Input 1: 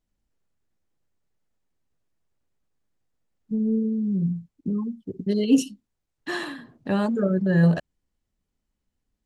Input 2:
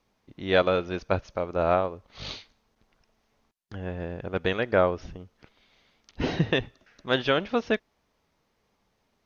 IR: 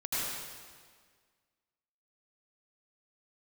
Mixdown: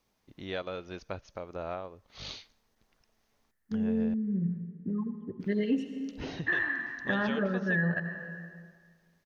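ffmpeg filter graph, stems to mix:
-filter_complex "[0:a]lowpass=frequency=1800:width_type=q:width=7.4,deesser=0.6,adelay=200,volume=-7.5dB,asplit=2[link_01][link_02];[link_02]volume=-14dB[link_03];[1:a]acompressor=threshold=-36dB:ratio=2,volume=-5dB,asplit=3[link_04][link_05][link_06];[link_04]atrim=end=4.14,asetpts=PTS-STARTPTS,afade=type=out:start_time=4.136:duration=0.004:curve=hsin[link_07];[link_05]atrim=start=4.14:end=5.4,asetpts=PTS-STARTPTS,volume=0[link_08];[link_06]atrim=start=5.4,asetpts=PTS-STARTPTS,afade=type=in:duration=0.004:curve=hsin[link_09];[link_07][link_08][link_09]concat=n=3:v=0:a=1[link_10];[2:a]atrim=start_sample=2205[link_11];[link_03][link_11]afir=irnorm=-1:irlink=0[link_12];[link_01][link_10][link_12]amix=inputs=3:normalize=0,highshelf=frequency=5900:gain=10.5,alimiter=limit=-19.5dB:level=0:latency=1:release=367"

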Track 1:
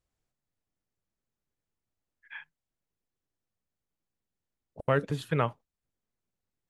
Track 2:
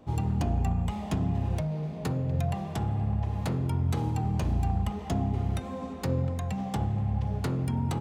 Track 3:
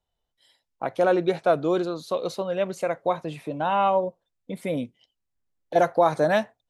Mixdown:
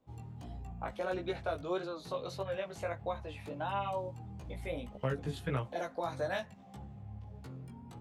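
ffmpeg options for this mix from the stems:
ffmpeg -i stem1.wav -i stem2.wav -i stem3.wav -filter_complex "[0:a]adelay=150,volume=-2dB[link_01];[1:a]volume=-16dB[link_02];[2:a]highpass=frequency=1400:poles=1,equalizer=frequency=9100:width=0.35:gain=-11,volume=2dB,asplit=2[link_03][link_04];[link_04]apad=whole_len=302026[link_05];[link_01][link_05]sidechaincompress=threshold=-35dB:ratio=8:attack=16:release=1010[link_06];[link_06][link_02][link_03]amix=inputs=3:normalize=0,acrossover=split=350|3000[link_07][link_08][link_09];[link_08]acompressor=threshold=-32dB:ratio=6[link_10];[link_07][link_10][link_09]amix=inputs=3:normalize=0,flanger=delay=15:depth=3.5:speed=1.6" out.wav

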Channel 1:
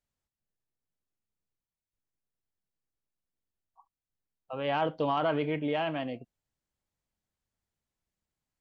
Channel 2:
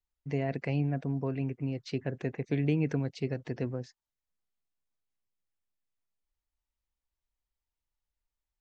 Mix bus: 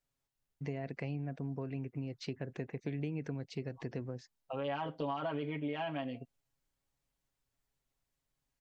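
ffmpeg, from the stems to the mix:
ffmpeg -i stem1.wav -i stem2.wav -filter_complex "[0:a]aecho=1:1:7.3:0.92,volume=-1.5dB[link_01];[1:a]adelay=350,volume=-1.5dB[link_02];[link_01][link_02]amix=inputs=2:normalize=0,acompressor=threshold=-37dB:ratio=3" out.wav

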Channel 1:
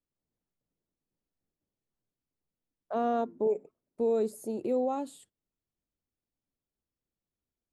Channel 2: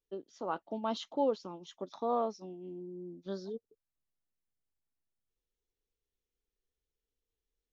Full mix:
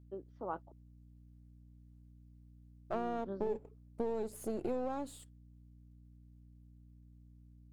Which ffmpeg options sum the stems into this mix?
ffmpeg -i stem1.wav -i stem2.wav -filter_complex "[0:a]aeval=exprs='if(lt(val(0),0),0.447*val(0),val(0))':channel_layout=same,acompressor=threshold=-34dB:ratio=6,volume=1.5dB[link_01];[1:a]lowpass=1400,volume=-3.5dB,asplit=3[link_02][link_03][link_04];[link_02]atrim=end=0.72,asetpts=PTS-STARTPTS,afade=type=out:start_time=0.716:duration=0.004:curve=hsin[link_05];[link_03]atrim=start=0.72:end=2.9,asetpts=PTS-STARTPTS,volume=0[link_06];[link_04]atrim=start=2.9,asetpts=PTS-STARTPTS,afade=type=in:duration=0.004:curve=hsin[link_07];[link_05][link_06][link_07]concat=n=3:v=0:a=1[link_08];[link_01][link_08]amix=inputs=2:normalize=0,aeval=exprs='val(0)+0.00126*(sin(2*PI*60*n/s)+sin(2*PI*2*60*n/s)/2+sin(2*PI*3*60*n/s)/3+sin(2*PI*4*60*n/s)/4+sin(2*PI*5*60*n/s)/5)':channel_layout=same,equalizer=frequency=97:width_type=o:width=0.39:gain=7.5" out.wav

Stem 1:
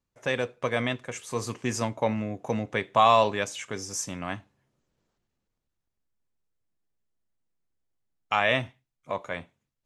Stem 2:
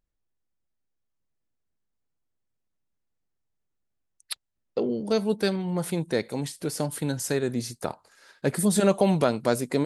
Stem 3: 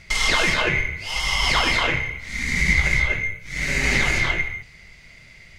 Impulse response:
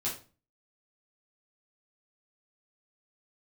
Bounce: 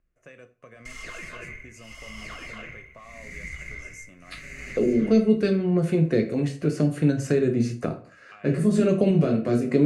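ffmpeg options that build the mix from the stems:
-filter_complex "[0:a]alimiter=limit=-16.5dB:level=0:latency=1:release=35,acompressor=threshold=-28dB:ratio=6,volume=-16dB,asplit=3[link_01][link_02][link_03];[link_02]volume=-12.5dB[link_04];[1:a]lowpass=3500,volume=2.5dB,asplit=2[link_05][link_06];[link_06]volume=-4dB[link_07];[2:a]adelay=750,volume=-18.5dB[link_08];[link_03]apad=whole_len=434619[link_09];[link_05][link_09]sidechaincompress=threshold=-56dB:ratio=8:attack=16:release=443[link_10];[3:a]atrim=start_sample=2205[link_11];[link_04][link_07]amix=inputs=2:normalize=0[link_12];[link_12][link_11]afir=irnorm=-1:irlink=0[link_13];[link_01][link_10][link_08][link_13]amix=inputs=4:normalize=0,superequalizer=9b=0.282:13b=0.316:14b=0.501,acrossover=split=460|3000[link_14][link_15][link_16];[link_15]acompressor=threshold=-34dB:ratio=6[link_17];[link_14][link_17][link_16]amix=inputs=3:normalize=0"

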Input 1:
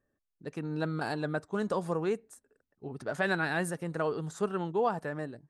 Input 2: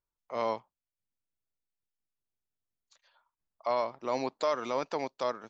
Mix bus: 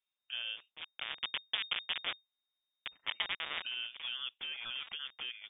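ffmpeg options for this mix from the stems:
ffmpeg -i stem1.wav -i stem2.wav -filter_complex "[0:a]lowshelf=frequency=64:gain=-3.5,acompressor=threshold=-32dB:ratio=16,acrusher=bits=4:mix=0:aa=0.000001,volume=0.5dB[link_01];[1:a]highshelf=frequency=2500:gain=8,acompressor=threshold=-34dB:ratio=3,alimiter=level_in=3.5dB:limit=-24dB:level=0:latency=1:release=274,volume=-3.5dB,volume=-0.5dB,asplit=2[link_02][link_03];[link_03]apad=whole_len=242216[link_04];[link_01][link_04]sidechaincompress=threshold=-54dB:ratio=12:attack=37:release=488[link_05];[link_05][link_02]amix=inputs=2:normalize=0,lowpass=frequency=3100:width_type=q:width=0.5098,lowpass=frequency=3100:width_type=q:width=0.6013,lowpass=frequency=3100:width_type=q:width=0.9,lowpass=frequency=3100:width_type=q:width=2.563,afreqshift=-3700" out.wav

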